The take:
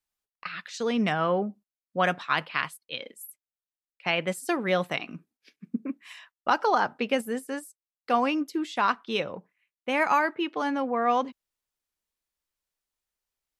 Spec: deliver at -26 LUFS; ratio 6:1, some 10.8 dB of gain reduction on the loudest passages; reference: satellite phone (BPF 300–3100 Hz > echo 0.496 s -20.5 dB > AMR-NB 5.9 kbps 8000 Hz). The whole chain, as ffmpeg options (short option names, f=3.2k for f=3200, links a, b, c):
-af "acompressor=threshold=-30dB:ratio=6,highpass=300,lowpass=3.1k,aecho=1:1:496:0.0944,volume=12dB" -ar 8000 -c:a libopencore_amrnb -b:a 5900